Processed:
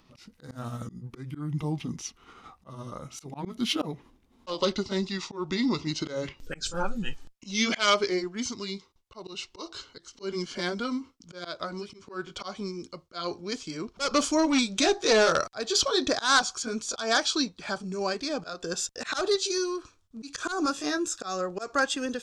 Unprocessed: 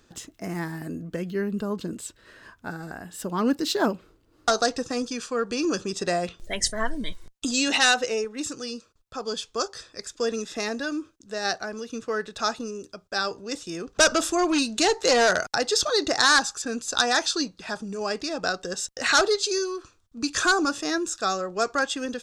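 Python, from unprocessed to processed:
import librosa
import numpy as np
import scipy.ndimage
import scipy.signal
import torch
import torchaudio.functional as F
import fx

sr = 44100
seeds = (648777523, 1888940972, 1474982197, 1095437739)

y = fx.pitch_glide(x, sr, semitones=-5.5, runs='ending unshifted')
y = fx.auto_swell(y, sr, attack_ms=178.0)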